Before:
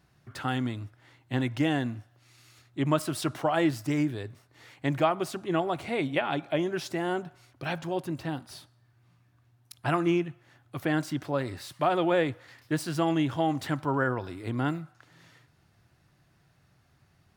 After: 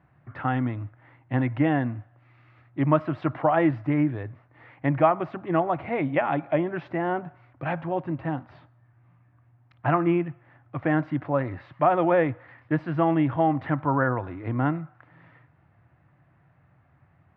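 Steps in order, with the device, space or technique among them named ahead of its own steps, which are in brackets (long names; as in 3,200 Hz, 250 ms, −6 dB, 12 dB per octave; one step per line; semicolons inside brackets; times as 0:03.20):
bass cabinet (loudspeaker in its box 76–2,000 Hz, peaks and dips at 210 Hz −6 dB, 400 Hz −8 dB, 1,500 Hz −4 dB)
level +6 dB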